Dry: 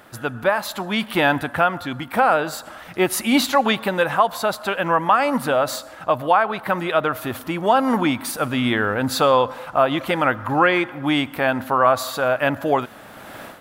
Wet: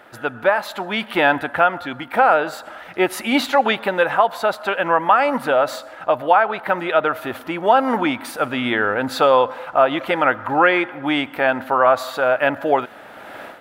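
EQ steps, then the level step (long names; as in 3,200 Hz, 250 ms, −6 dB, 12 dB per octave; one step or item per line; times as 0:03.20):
bass and treble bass −11 dB, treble −11 dB
notch filter 1,100 Hz, Q 11
+3.0 dB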